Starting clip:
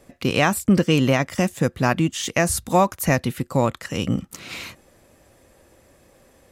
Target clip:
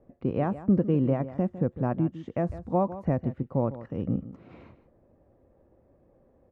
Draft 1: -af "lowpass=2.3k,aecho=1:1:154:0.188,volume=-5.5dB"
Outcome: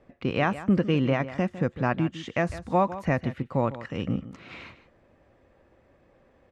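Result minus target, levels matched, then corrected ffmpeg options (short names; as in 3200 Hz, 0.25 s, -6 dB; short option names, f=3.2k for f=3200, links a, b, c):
2000 Hz band +14.5 dB
-af "lowpass=680,aecho=1:1:154:0.188,volume=-5.5dB"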